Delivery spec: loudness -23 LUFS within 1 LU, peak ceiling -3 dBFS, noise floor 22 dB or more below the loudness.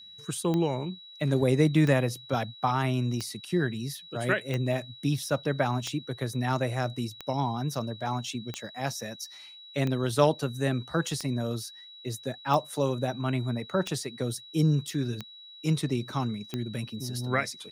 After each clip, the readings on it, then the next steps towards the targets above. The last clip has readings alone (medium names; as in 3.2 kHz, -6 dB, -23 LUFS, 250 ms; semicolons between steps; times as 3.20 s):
clicks found 13; steady tone 3.9 kHz; tone level -46 dBFS; loudness -29.5 LUFS; peak level -7.5 dBFS; loudness target -23.0 LUFS
-> de-click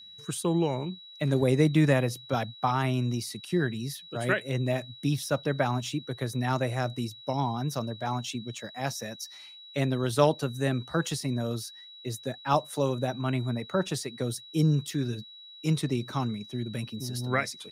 clicks found 0; steady tone 3.9 kHz; tone level -46 dBFS
-> band-stop 3.9 kHz, Q 30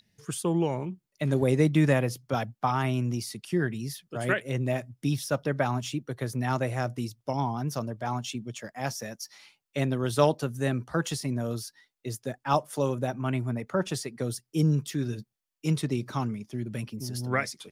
steady tone not found; loudness -29.5 LUFS; peak level -8.0 dBFS; loudness target -23.0 LUFS
-> trim +6.5 dB; peak limiter -3 dBFS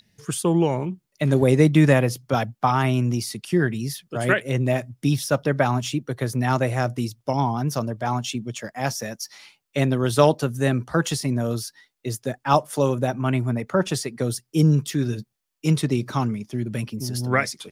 loudness -23.0 LUFS; peak level -3.0 dBFS; noise floor -76 dBFS